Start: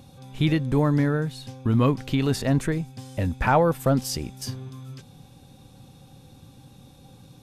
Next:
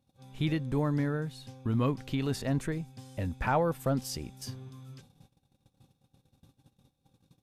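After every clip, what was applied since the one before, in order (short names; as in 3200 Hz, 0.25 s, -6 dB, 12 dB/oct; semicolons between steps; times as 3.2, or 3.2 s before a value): gate -46 dBFS, range -20 dB; gain -8 dB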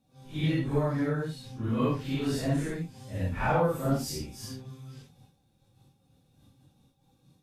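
phase scrambler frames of 0.2 s; gain +2 dB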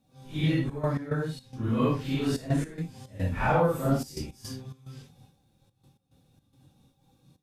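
step gate "xxxxx.x.xx.x" 108 bpm -12 dB; gain +2 dB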